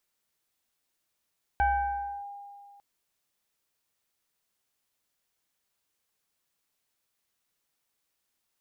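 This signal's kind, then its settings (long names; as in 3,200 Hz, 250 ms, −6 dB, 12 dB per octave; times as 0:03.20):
two-operator FM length 1.20 s, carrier 807 Hz, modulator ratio 0.92, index 0.81, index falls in 0.65 s linear, decay 2.23 s, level −20 dB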